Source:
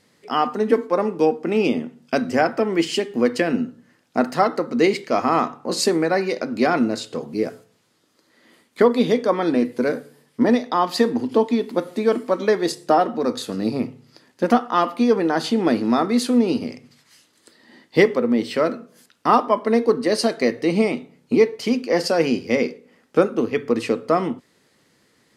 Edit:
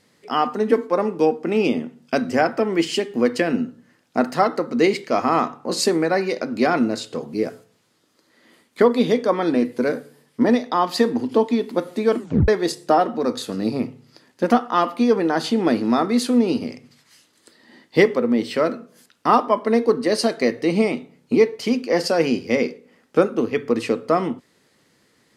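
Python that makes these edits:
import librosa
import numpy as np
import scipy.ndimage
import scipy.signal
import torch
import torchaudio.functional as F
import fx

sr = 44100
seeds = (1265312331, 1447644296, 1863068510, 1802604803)

y = fx.edit(x, sr, fx.tape_stop(start_s=12.19, length_s=0.29), tone=tone)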